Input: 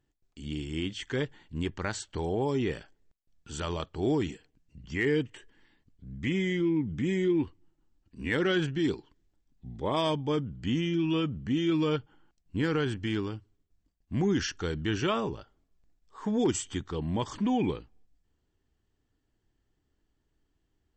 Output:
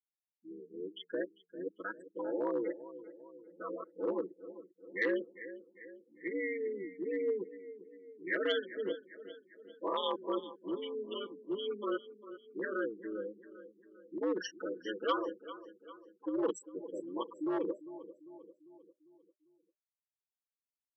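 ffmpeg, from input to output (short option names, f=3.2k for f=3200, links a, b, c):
-filter_complex "[0:a]afftfilt=real='re*gte(hypot(re,im),0.0708)':imag='im*gte(hypot(re,im),0.0708)':win_size=1024:overlap=0.75,aeval=exprs='val(0)*sin(2*PI*100*n/s)':c=same,bandreject=f=2.5k:w=9.6,aecho=1:1:6.1:0.82,asplit=2[a][b];[b]aecho=0:1:398|796|1194|1592|1990:0.178|0.096|0.0519|0.028|0.0151[c];[a][c]amix=inputs=2:normalize=0,asoftclip=type=hard:threshold=-21dB,equalizer=f=730:w=4.4:g=-13.5,afftdn=nr=15:nf=-52,highpass=f=390:w=0.5412,highpass=f=390:w=1.3066,equalizer=f=460:t=q:w=4:g=-4,equalizer=f=770:t=q:w=4:g=-5,equalizer=f=1.4k:t=q:w=4:g=-4,equalizer=f=2.4k:t=q:w=4:g=-9,lowpass=f=5.4k:w=0.5412,lowpass=f=5.4k:w=1.3066,volume=3dB"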